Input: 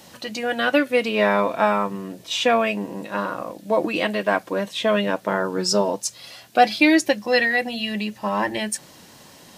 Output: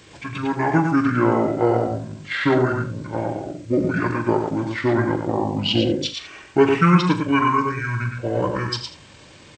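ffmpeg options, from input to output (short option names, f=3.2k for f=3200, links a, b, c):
-filter_complex "[0:a]asplit=2[a][b];[b]aecho=0:1:106:0.562[c];[a][c]amix=inputs=2:normalize=0,asetrate=24750,aresample=44100,atempo=1.7818,asplit=2[d][e];[e]aecho=0:1:40|80:0.251|0.224[f];[d][f]amix=inputs=2:normalize=0"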